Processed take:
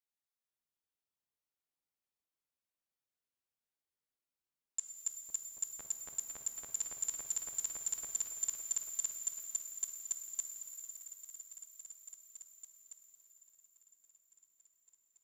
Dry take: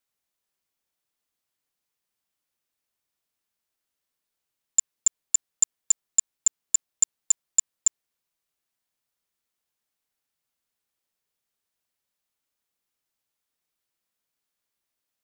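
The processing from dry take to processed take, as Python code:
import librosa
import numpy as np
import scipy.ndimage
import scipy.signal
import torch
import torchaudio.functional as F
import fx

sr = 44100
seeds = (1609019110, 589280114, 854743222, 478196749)

y = fx.echo_opening(x, sr, ms=505, hz=750, octaves=1, feedback_pct=70, wet_db=0)
y = fx.level_steps(y, sr, step_db=16)
y = fx.rev_shimmer(y, sr, seeds[0], rt60_s=3.5, semitones=12, shimmer_db=-8, drr_db=4.5)
y = F.gain(torch.from_numpy(y), -2.5).numpy()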